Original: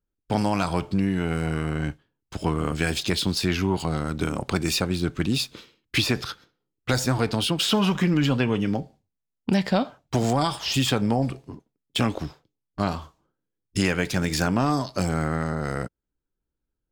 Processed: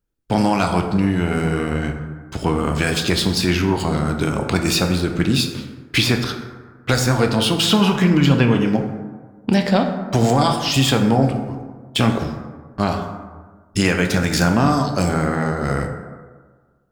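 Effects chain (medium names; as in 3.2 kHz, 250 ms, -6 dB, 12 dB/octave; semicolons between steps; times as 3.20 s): plate-style reverb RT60 1.5 s, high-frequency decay 0.4×, DRR 4 dB; trim +5 dB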